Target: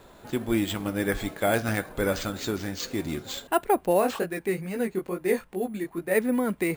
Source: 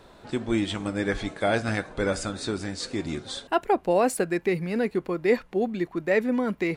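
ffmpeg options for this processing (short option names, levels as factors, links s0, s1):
-filter_complex "[0:a]acrusher=samples=4:mix=1:aa=0.000001,asplit=3[s0][s1][s2];[s0]afade=t=out:st=4:d=0.02[s3];[s1]flanger=delay=15.5:depth=5.8:speed=2.3,afade=t=in:st=4:d=0.02,afade=t=out:st=6.14:d=0.02[s4];[s2]afade=t=in:st=6.14:d=0.02[s5];[s3][s4][s5]amix=inputs=3:normalize=0"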